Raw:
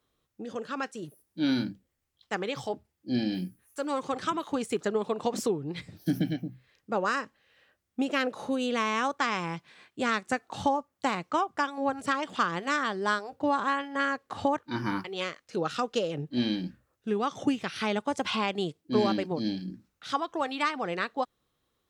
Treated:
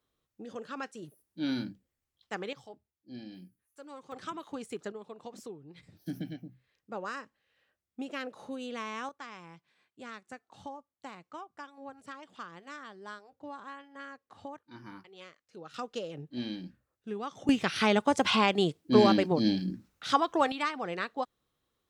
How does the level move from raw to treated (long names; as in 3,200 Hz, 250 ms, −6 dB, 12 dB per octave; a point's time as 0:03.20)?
−5.5 dB
from 0:02.53 −16.5 dB
from 0:04.12 −9.5 dB
from 0:04.92 −16 dB
from 0:05.83 −10 dB
from 0:09.09 −17 dB
from 0:15.74 −8.5 dB
from 0:17.49 +4 dB
from 0:20.52 −3.5 dB